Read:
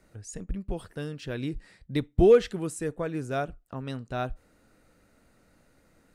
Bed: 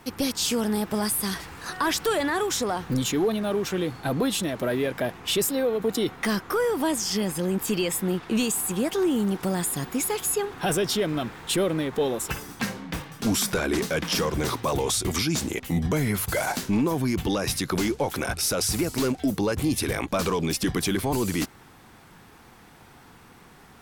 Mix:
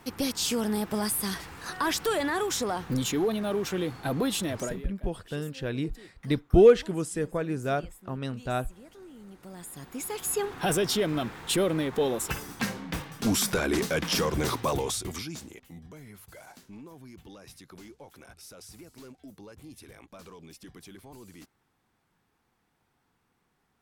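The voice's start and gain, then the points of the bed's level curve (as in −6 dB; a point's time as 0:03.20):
4.35 s, +1.5 dB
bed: 0:04.60 −3 dB
0:04.92 −25.5 dB
0:09.14 −25.5 dB
0:10.45 −1.5 dB
0:14.68 −1.5 dB
0:15.84 −23 dB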